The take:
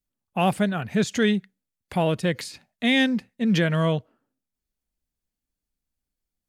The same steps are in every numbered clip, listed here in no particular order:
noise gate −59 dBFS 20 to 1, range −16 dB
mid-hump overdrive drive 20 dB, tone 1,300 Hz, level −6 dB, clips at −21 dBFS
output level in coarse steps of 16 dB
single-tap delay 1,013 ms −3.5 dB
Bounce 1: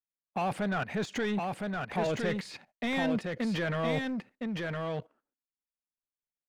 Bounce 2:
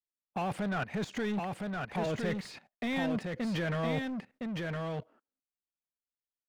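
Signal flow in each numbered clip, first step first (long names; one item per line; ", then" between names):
output level in coarse steps, then mid-hump overdrive, then single-tap delay, then noise gate
mid-hump overdrive, then output level in coarse steps, then single-tap delay, then noise gate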